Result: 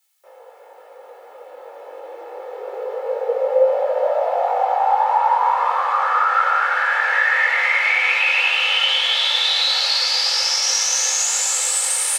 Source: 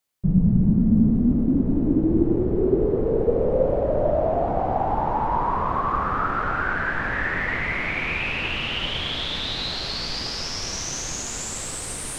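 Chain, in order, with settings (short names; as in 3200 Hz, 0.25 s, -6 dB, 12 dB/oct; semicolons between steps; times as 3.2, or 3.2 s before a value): Chebyshev high-pass 510 Hz, order 6; tilt +2 dB/oct; comb 2.3 ms, depth 56%; in parallel at +1 dB: limiter -16.5 dBFS, peak gain reduction 5 dB; on the sum: chorus 0.28 Hz, delay 19 ms, depth 2.1 ms; gain +3.5 dB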